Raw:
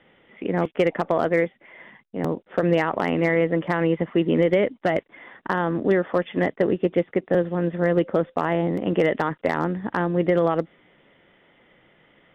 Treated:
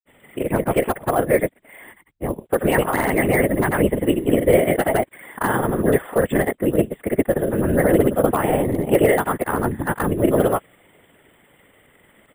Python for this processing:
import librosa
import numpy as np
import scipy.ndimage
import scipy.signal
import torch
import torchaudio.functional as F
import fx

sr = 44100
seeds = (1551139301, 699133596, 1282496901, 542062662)

y = fx.granulator(x, sr, seeds[0], grain_ms=100.0, per_s=20.0, spray_ms=100.0, spread_st=0)
y = np.repeat(scipy.signal.resample_poly(y, 1, 4), 4)[:len(y)]
y = fx.whisperise(y, sr, seeds[1])
y = y * 10.0 ** (4.5 / 20.0)